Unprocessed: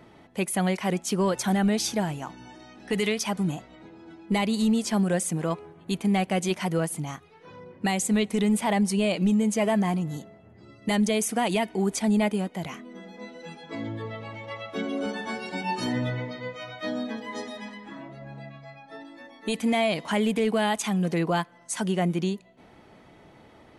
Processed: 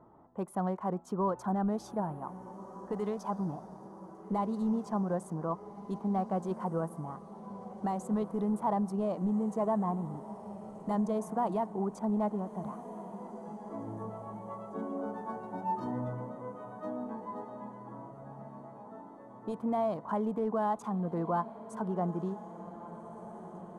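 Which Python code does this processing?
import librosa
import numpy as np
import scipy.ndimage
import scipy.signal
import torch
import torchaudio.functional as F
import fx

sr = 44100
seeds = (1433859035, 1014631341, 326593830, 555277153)

y = fx.wiener(x, sr, points=9)
y = fx.high_shelf_res(y, sr, hz=1600.0, db=-14.0, q=3.0)
y = fx.echo_diffused(y, sr, ms=1585, feedback_pct=64, wet_db=-14)
y = F.gain(torch.from_numpy(y), -8.5).numpy()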